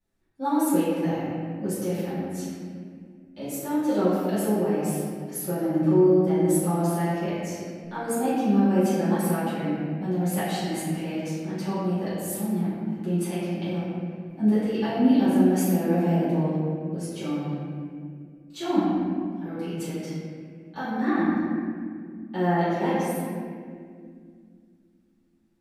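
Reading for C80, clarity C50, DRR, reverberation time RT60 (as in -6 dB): -0.5 dB, -3.0 dB, -14.5 dB, 2.2 s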